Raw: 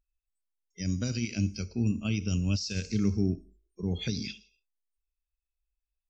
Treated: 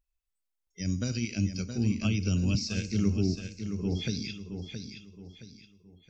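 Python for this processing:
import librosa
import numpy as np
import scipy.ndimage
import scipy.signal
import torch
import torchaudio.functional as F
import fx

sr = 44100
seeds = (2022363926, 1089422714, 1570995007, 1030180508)

y = fx.echo_feedback(x, sr, ms=670, feedback_pct=36, wet_db=-8.0)
y = fx.band_squash(y, sr, depth_pct=100, at=(2.01, 2.55))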